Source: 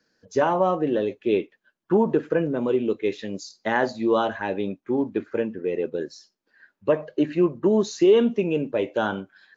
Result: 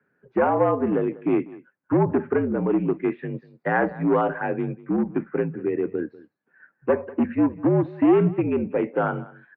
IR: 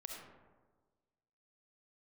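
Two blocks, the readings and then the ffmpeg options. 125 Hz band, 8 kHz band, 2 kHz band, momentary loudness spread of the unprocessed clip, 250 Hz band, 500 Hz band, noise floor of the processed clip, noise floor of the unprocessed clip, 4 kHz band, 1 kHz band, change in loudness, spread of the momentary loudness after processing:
+6.0 dB, no reading, 0.0 dB, 10 LU, +2.0 dB, -1.5 dB, -72 dBFS, -77 dBFS, under -15 dB, +1.0 dB, +0.5 dB, 9 LU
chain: -filter_complex "[0:a]aeval=exprs='clip(val(0),-1,0.119)':c=same,asplit=2[s0][s1];[s1]aecho=0:1:194:0.1[s2];[s0][s2]amix=inputs=2:normalize=0,highpass=f=180:t=q:w=0.5412,highpass=f=180:t=q:w=1.307,lowpass=f=2300:t=q:w=0.5176,lowpass=f=2300:t=q:w=0.7071,lowpass=f=2300:t=q:w=1.932,afreqshift=-60,volume=1.19"

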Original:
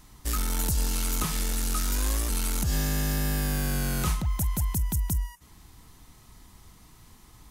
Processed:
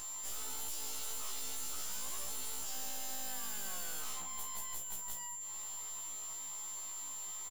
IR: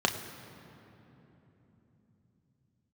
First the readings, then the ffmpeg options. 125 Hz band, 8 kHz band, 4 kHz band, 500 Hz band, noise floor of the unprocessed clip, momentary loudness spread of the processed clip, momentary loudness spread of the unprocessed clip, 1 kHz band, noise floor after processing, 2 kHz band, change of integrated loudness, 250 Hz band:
-33.5 dB, -4.0 dB, -8.5 dB, -15.5 dB, -54 dBFS, 2 LU, 2 LU, -10.5 dB, -44 dBFS, -13.0 dB, -12.0 dB, -25.5 dB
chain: -filter_complex "[0:a]highpass=840,acompressor=mode=upward:threshold=0.0126:ratio=2.5,aeval=exprs='max(val(0),0)':c=same,aeval=exprs='val(0)+0.00316*sin(2*PI*7300*n/s)':c=same,aeval=exprs='clip(val(0),-1,0.0133)':c=same,asplit=2[s0][s1];[s1]adelay=991.3,volume=0.224,highshelf=f=4000:g=-22.3[s2];[s0][s2]amix=inputs=2:normalize=0,asplit=2[s3][s4];[1:a]atrim=start_sample=2205,highshelf=f=8300:g=10[s5];[s4][s5]afir=irnorm=-1:irlink=0,volume=0.126[s6];[s3][s6]amix=inputs=2:normalize=0,afftfilt=real='re*1.73*eq(mod(b,3),0)':imag='im*1.73*eq(mod(b,3),0)':win_size=2048:overlap=0.75,volume=1.26"

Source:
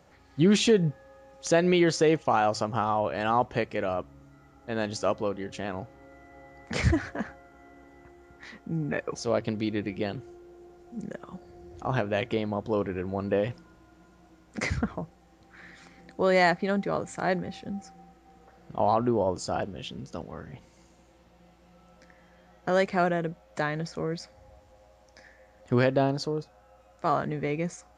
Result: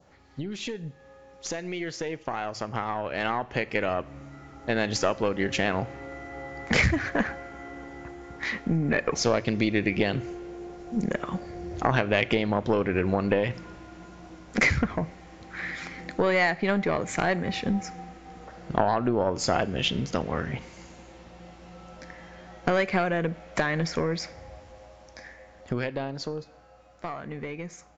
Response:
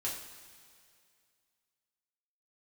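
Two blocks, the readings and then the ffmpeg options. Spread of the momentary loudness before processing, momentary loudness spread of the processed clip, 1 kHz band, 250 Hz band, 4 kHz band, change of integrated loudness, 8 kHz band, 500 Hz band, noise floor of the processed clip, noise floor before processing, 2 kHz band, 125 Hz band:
17 LU, 21 LU, -0.5 dB, +0.5 dB, +3.0 dB, +0.5 dB, +2.0 dB, -0.5 dB, -52 dBFS, -58 dBFS, +5.5 dB, +1.0 dB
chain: -filter_complex "[0:a]acompressor=threshold=0.0251:ratio=10,aeval=exprs='0.133*(cos(1*acos(clip(val(0)/0.133,-1,1)))-cos(1*PI/2))+0.0299*(cos(4*acos(clip(val(0)/0.133,-1,1)))-cos(4*PI/2))+0.00841*(cos(6*acos(clip(val(0)/0.133,-1,1)))-cos(6*PI/2))':c=same,aresample=16000,aresample=44100,dynaudnorm=f=670:g=11:m=3.55,asplit=2[s0][s1];[1:a]atrim=start_sample=2205,adelay=37[s2];[s1][s2]afir=irnorm=-1:irlink=0,volume=0.0841[s3];[s0][s3]amix=inputs=2:normalize=0,adynamicequalizer=threshold=0.00355:dfrequency=2200:dqfactor=1.6:tfrequency=2200:tqfactor=1.6:attack=5:release=100:ratio=0.375:range=3.5:mode=boostabove:tftype=bell"

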